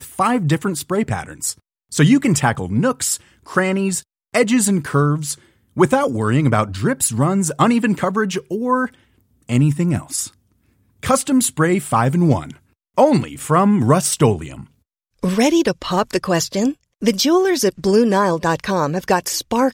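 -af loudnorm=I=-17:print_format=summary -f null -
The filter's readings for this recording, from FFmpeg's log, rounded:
Input Integrated:    -17.8 LUFS
Input True Peak:      -2.1 dBTP
Input LRA:             2.2 LU
Input Threshold:     -28.1 LUFS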